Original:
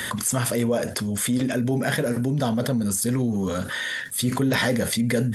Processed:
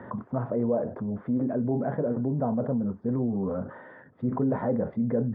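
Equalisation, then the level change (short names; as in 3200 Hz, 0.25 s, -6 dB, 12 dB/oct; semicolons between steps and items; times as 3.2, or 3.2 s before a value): HPF 150 Hz 6 dB/oct; LPF 1000 Hz 24 dB/oct; -2.0 dB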